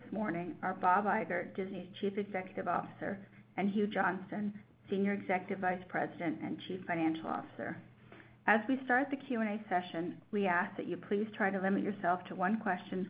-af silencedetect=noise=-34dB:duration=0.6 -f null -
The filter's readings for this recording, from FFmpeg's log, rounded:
silence_start: 7.73
silence_end: 8.48 | silence_duration: 0.75